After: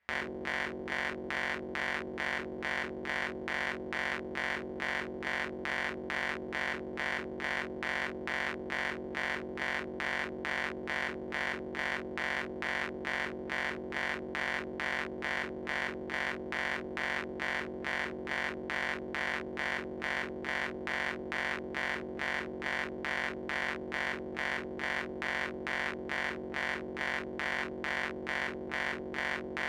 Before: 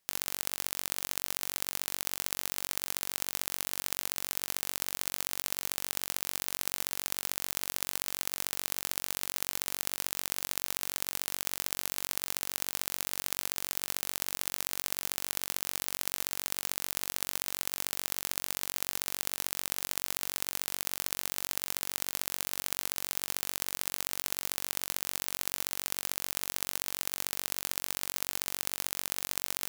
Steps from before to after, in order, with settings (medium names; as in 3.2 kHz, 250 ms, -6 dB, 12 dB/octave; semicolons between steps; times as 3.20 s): LFO low-pass square 2.3 Hz 380–1900 Hz; reverberation, pre-delay 6 ms, DRR -5.5 dB